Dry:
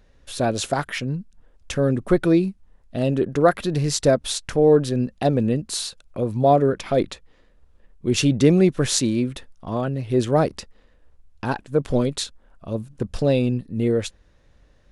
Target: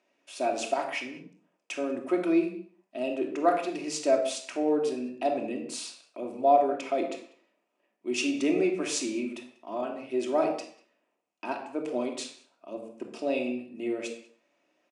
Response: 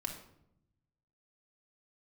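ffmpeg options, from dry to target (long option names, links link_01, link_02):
-filter_complex "[0:a]highpass=frequency=290:width=0.5412,highpass=frequency=290:width=1.3066,equalizer=frequency=500:width_type=q:width=4:gain=-4,equalizer=frequency=720:width_type=q:width=4:gain=5,equalizer=frequency=1600:width_type=q:width=4:gain=-6,equalizer=frequency=2500:width_type=q:width=4:gain=9,equalizer=frequency=3900:width_type=q:width=4:gain=-7,lowpass=frequency=9300:width=0.5412,lowpass=frequency=9300:width=1.3066,asplit=2[link_01][link_02];[link_02]adelay=192.4,volume=-23dB,highshelf=frequency=4000:gain=-4.33[link_03];[link_01][link_03]amix=inputs=2:normalize=0[link_04];[1:a]atrim=start_sample=2205,afade=type=out:start_time=0.28:duration=0.01,atrim=end_sample=12789[link_05];[link_04][link_05]afir=irnorm=-1:irlink=0,volume=-7dB"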